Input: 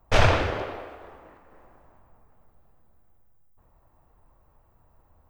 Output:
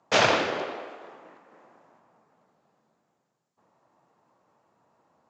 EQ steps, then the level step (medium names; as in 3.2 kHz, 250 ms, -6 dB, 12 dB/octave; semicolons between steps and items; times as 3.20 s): high-pass 170 Hz 24 dB/octave; Chebyshev low-pass 7.2 kHz, order 5; treble shelf 3.4 kHz +8 dB; 0.0 dB